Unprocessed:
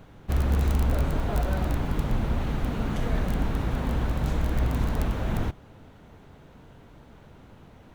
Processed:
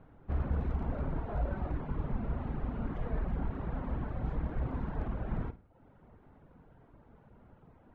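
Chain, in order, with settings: low-pass 1.5 kHz 12 dB/octave; de-hum 46.09 Hz, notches 15; on a send: flutter echo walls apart 9.1 m, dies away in 0.47 s; on the sum: reverb removal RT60 0.65 s; trim -7 dB

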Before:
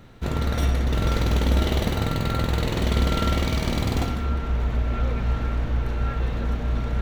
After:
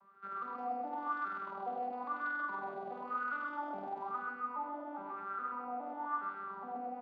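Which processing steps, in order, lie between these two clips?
vocoder on a broken chord major triad, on G3, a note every 414 ms; peak limiter -25 dBFS, peak gain reduction 11 dB; wah-wah 0.99 Hz 700–1400 Hz, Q 16; feedback delay 130 ms, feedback 43%, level -4 dB; trim +12 dB

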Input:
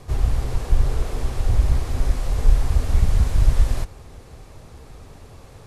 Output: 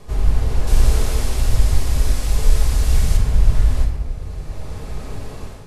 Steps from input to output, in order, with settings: 0.67–3.17 s: treble shelf 2.9 kHz +12 dB; simulated room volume 690 m³, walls mixed, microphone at 1.4 m; level rider gain up to 9 dB; trim -1 dB

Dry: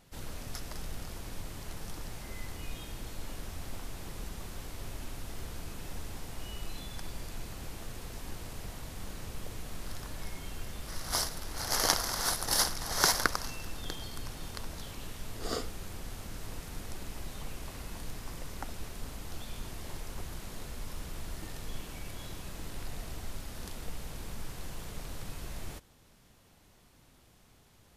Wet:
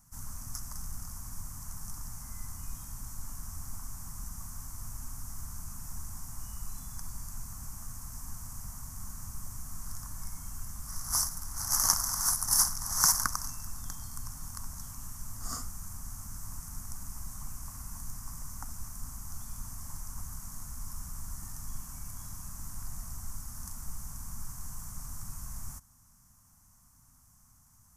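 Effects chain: FFT filter 110 Hz 0 dB, 260 Hz -6 dB, 390 Hz -28 dB, 1.1 kHz +1 dB, 2.6 kHz -18 dB, 3.8 kHz -21 dB, 5.9 kHz +6 dB

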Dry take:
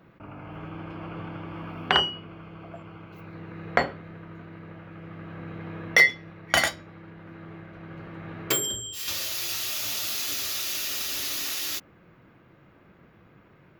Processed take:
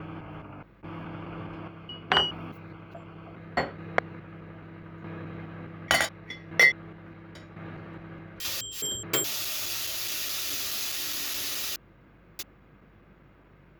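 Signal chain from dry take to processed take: slices played last to first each 210 ms, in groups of 4; hum 50 Hz, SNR 28 dB; trim -1.5 dB

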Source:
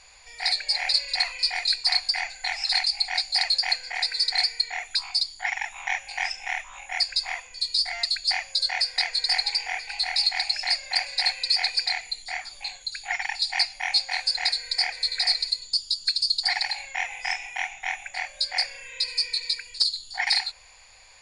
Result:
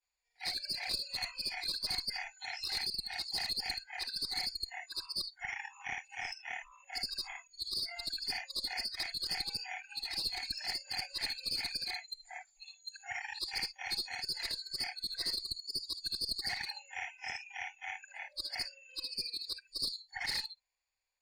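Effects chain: short-time spectra conjugated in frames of 158 ms; one-sided clip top -26.5 dBFS; spectral noise reduction 26 dB; trim -7.5 dB

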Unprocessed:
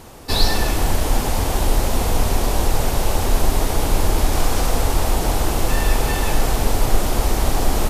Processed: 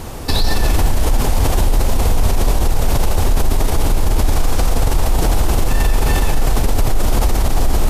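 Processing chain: bass shelf 140 Hz +7.5 dB; in parallel at -3 dB: compressor with a negative ratio -15 dBFS, ratio -1; on the sum: peak limiter -7.5 dBFS, peak gain reduction 11.5 dB; trim +1.5 dB

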